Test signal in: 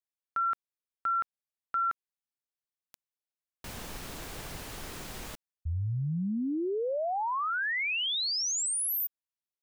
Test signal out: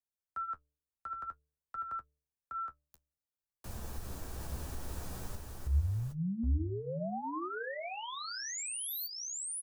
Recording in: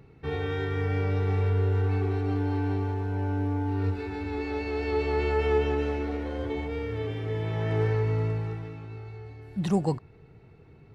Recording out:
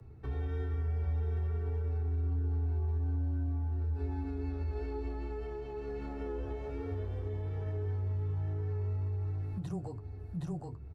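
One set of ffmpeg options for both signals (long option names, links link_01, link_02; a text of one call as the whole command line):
ffmpeg -i in.wav -filter_complex "[0:a]acrossover=split=140|340|2200[link_01][link_02][link_03][link_04];[link_01]acontrast=77[link_05];[link_05][link_02][link_03][link_04]amix=inputs=4:normalize=0,bandreject=frequency=2100:width=12,afreqshift=-15,aecho=1:1:768:0.668,alimiter=limit=-20.5dB:level=0:latency=1:release=143,acompressor=threshold=-28dB:ratio=6:attack=0.57:release=485:knee=1:detection=rms,equalizer=frequency=69:width=6.7:gain=12,flanger=delay=8.7:depth=4.2:regen=-38:speed=0.53:shape=triangular,equalizer=frequency=2900:width=0.87:gain=-9,bandreject=frequency=147.1:width_type=h:width=4,bandreject=frequency=294.2:width_type=h:width=4,bandreject=frequency=441.3:width_type=h:width=4,bandreject=frequency=588.4:width_type=h:width=4" out.wav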